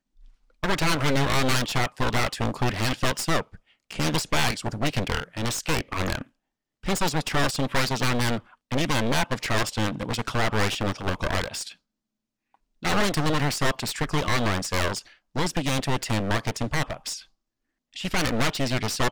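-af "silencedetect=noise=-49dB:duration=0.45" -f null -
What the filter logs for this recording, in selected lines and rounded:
silence_start: 6.27
silence_end: 6.83 | silence_duration: 0.56
silence_start: 11.74
silence_end: 12.54 | silence_duration: 0.80
silence_start: 17.25
silence_end: 17.93 | silence_duration: 0.68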